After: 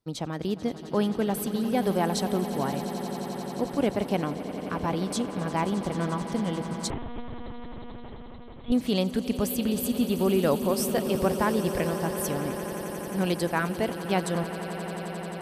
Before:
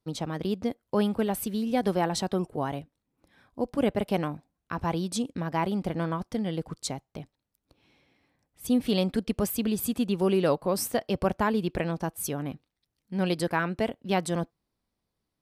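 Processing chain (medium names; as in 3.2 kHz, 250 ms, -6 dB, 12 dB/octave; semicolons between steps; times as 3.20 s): echo with a slow build-up 88 ms, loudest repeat 8, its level -16 dB; 6.90–8.72 s: monotone LPC vocoder at 8 kHz 240 Hz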